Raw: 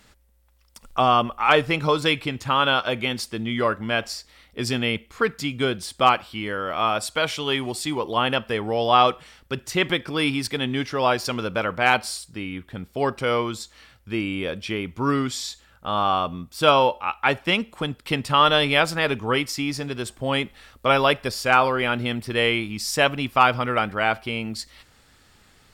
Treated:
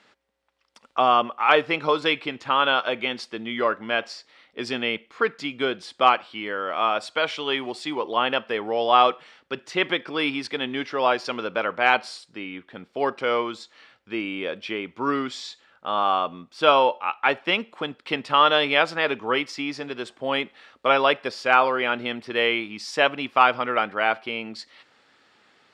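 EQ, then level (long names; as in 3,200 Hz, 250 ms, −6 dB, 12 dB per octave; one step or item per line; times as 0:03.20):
band-pass filter 300–3,900 Hz
0.0 dB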